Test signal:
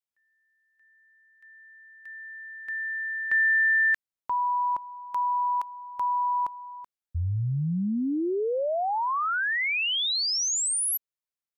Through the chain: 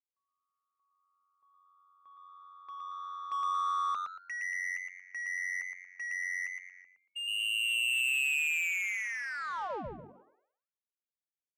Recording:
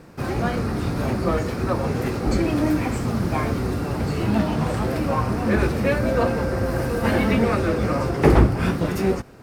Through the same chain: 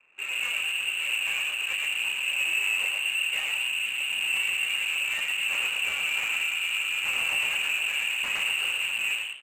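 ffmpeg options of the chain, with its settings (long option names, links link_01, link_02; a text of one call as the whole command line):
ffmpeg -i in.wav -filter_complex "[0:a]acrossover=split=220[link_01][link_02];[link_01]asoftclip=type=tanh:threshold=-16.5dB[link_03];[link_03][link_02]amix=inputs=2:normalize=0,highpass=frequency=150:poles=1,aeval=exprs='0.112*(abs(mod(val(0)/0.112+3,4)-2)-1)':channel_layout=same,equalizer=frequency=1300:width=0.63:gain=-10,lowpass=frequency=2500:width_type=q:width=0.5098,lowpass=frequency=2500:width_type=q:width=0.6013,lowpass=frequency=2500:width_type=q:width=0.9,lowpass=frequency=2500:width_type=q:width=2.563,afreqshift=-2900,bandreject=frequency=50:width_type=h:width=6,bandreject=frequency=100:width_type=h:width=6,bandreject=frequency=150:width_type=h:width=6,bandreject=frequency=200:width_type=h:width=6,bandreject=frequency=250:width_type=h:width=6,asplit=6[link_04][link_05][link_06][link_07][link_08][link_09];[link_05]adelay=115,afreqshift=91,volume=-3dB[link_10];[link_06]adelay=230,afreqshift=182,volume=-11.6dB[link_11];[link_07]adelay=345,afreqshift=273,volume=-20.3dB[link_12];[link_08]adelay=460,afreqshift=364,volume=-28.9dB[link_13];[link_09]adelay=575,afreqshift=455,volume=-37.5dB[link_14];[link_04][link_10][link_11][link_12][link_13][link_14]amix=inputs=6:normalize=0,adynamicequalizer=threshold=0.00178:dfrequency=330:dqfactor=1.9:tfrequency=330:tqfactor=1.9:attack=5:release=100:ratio=0.375:range=2.5:mode=cutabove:tftype=bell,bandreject=frequency=680:width=12,adynamicsmooth=sensitivity=6.5:basefreq=1100,volume=-2.5dB" out.wav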